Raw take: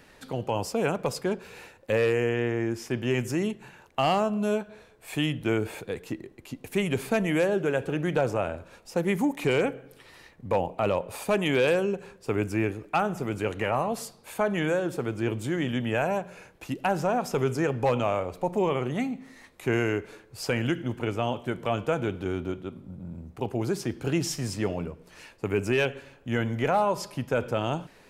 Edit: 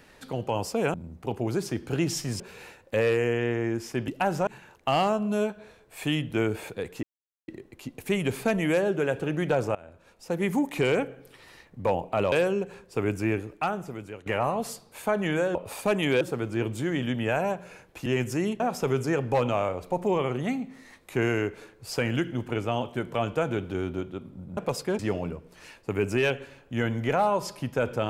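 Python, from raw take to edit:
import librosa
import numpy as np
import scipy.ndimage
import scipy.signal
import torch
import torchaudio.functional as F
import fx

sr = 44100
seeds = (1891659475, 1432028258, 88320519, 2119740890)

y = fx.edit(x, sr, fx.swap(start_s=0.94, length_s=0.42, other_s=23.08, other_length_s=1.46),
    fx.swap(start_s=3.04, length_s=0.54, other_s=16.72, other_length_s=0.39),
    fx.insert_silence(at_s=6.14, length_s=0.45),
    fx.fade_in_from(start_s=8.41, length_s=0.79, floor_db=-21.5),
    fx.move(start_s=10.98, length_s=0.66, to_s=14.87),
    fx.fade_out_to(start_s=12.71, length_s=0.87, floor_db=-17.0), tone=tone)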